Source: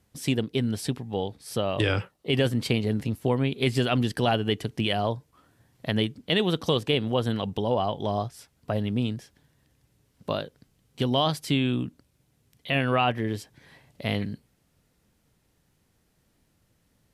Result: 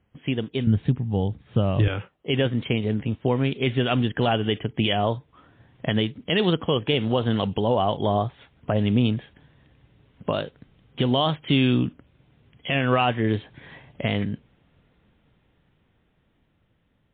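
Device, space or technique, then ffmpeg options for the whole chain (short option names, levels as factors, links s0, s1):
low-bitrate web radio: -filter_complex "[0:a]asettb=1/sr,asplit=3[s0][s1][s2];[s0]atrim=end=0.674[s3];[s1]atrim=start=0.67:end=1.88,asetpts=PTS-STARTPTS,afade=t=in:d=0.004:c=qsin,afade=t=out:st=1.206:d=0.004:c=qsin,bass=f=250:g=14,treble=f=4000:g=-13[s4];[s2]atrim=start=1.876[s5];[s3][s4]acrossfade=d=0.004:c1=hsin:c2=qsin[s6];[s6][s5]acrossfade=d=0.004:c1=qsin:c2=hsin,dynaudnorm=f=680:g=9:m=4.73,alimiter=limit=0.316:level=0:latency=1:release=399" -ar 8000 -c:a libmp3lame -b:a 24k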